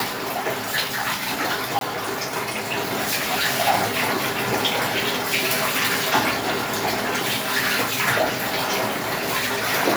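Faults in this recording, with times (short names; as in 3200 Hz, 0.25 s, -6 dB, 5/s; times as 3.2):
1.79–1.81 gap 22 ms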